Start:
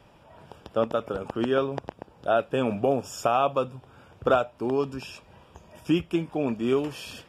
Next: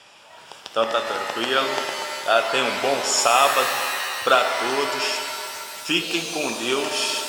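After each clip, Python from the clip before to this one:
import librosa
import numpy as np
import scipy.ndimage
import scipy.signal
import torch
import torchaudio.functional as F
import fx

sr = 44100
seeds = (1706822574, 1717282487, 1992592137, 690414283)

y = fx.weighting(x, sr, curve='ITU-R 468')
y = fx.rev_shimmer(y, sr, seeds[0], rt60_s=2.3, semitones=7, shimmer_db=-2, drr_db=5.5)
y = y * 10.0 ** (6.0 / 20.0)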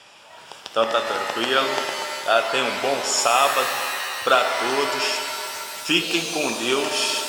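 y = fx.rider(x, sr, range_db=3, speed_s=2.0)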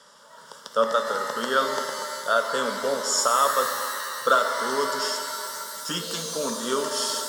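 y = fx.fixed_phaser(x, sr, hz=500.0, stages=8)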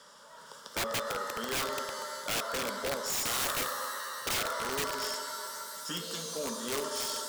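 y = fx.law_mismatch(x, sr, coded='mu')
y = (np.mod(10.0 ** (17.5 / 20.0) * y + 1.0, 2.0) - 1.0) / 10.0 ** (17.5 / 20.0)
y = y * 10.0 ** (-8.5 / 20.0)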